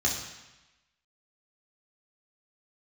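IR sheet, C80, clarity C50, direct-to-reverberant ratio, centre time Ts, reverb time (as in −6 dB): 7.0 dB, 4.5 dB, −3.0 dB, 41 ms, 1.0 s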